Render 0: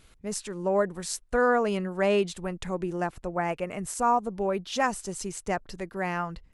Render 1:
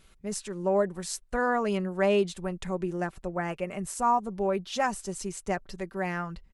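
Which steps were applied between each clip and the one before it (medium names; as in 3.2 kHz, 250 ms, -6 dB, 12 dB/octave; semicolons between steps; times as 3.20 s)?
comb 5.2 ms, depth 40%; trim -2.5 dB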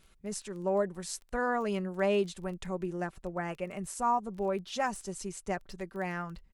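crackle 15 per s -37 dBFS; trim -4 dB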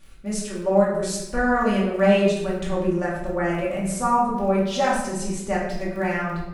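simulated room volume 390 m³, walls mixed, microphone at 2.4 m; trim +4 dB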